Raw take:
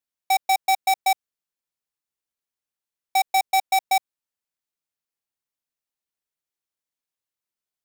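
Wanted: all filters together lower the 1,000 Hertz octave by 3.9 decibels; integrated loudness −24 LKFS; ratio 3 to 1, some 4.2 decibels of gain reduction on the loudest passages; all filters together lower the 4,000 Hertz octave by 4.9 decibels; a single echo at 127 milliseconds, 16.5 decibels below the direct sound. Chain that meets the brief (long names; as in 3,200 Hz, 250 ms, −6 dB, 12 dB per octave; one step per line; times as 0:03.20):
parametric band 1,000 Hz −6 dB
parametric band 4,000 Hz −5.5 dB
downward compressor 3 to 1, threshold −25 dBFS
single-tap delay 127 ms −16.5 dB
level +5.5 dB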